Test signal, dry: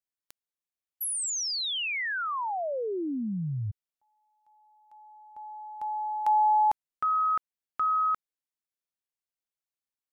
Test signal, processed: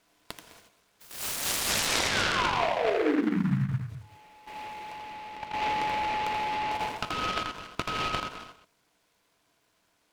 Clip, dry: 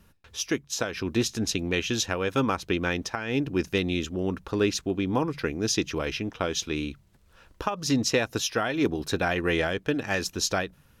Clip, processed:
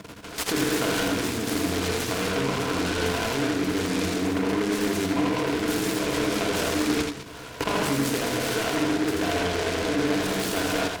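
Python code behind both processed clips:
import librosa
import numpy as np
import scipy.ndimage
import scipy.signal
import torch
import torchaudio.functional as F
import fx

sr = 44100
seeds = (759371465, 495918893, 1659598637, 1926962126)

y = fx.bin_compress(x, sr, power=0.6)
y = fx.hum_notches(y, sr, base_hz=50, count=4)
y = fx.rev_gated(y, sr, seeds[0], gate_ms=300, shape='flat', drr_db=-2.5)
y = fx.level_steps(y, sr, step_db=14)
y = scipy.signal.sosfilt(scipy.signal.butter(2, 72.0, 'highpass', fs=sr, output='sos'), y)
y = fx.air_absorb(y, sr, metres=68.0)
y = fx.echo_multitap(y, sr, ms=(82, 207), db=(-4.0, -13.5))
y = fx.rider(y, sr, range_db=4, speed_s=2.0)
y = fx.ripple_eq(y, sr, per_octave=1.7, db=10)
y = fx.noise_mod_delay(y, sr, seeds[1], noise_hz=1400.0, depth_ms=0.1)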